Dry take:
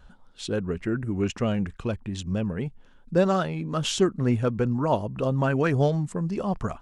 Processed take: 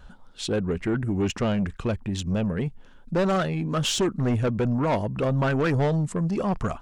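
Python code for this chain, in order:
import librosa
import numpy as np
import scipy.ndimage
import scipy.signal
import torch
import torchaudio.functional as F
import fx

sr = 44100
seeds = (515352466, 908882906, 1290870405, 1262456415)

y = 10.0 ** (-23.0 / 20.0) * np.tanh(x / 10.0 ** (-23.0 / 20.0))
y = y * 10.0 ** (4.5 / 20.0)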